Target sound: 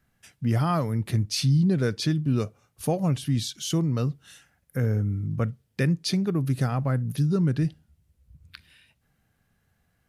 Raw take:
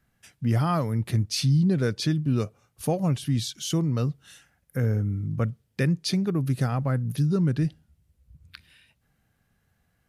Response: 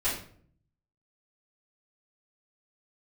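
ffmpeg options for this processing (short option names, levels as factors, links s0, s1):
-filter_complex "[0:a]asplit=2[s0][s1];[1:a]atrim=start_sample=2205,atrim=end_sample=3528[s2];[s1][s2]afir=irnorm=-1:irlink=0,volume=0.0316[s3];[s0][s3]amix=inputs=2:normalize=0"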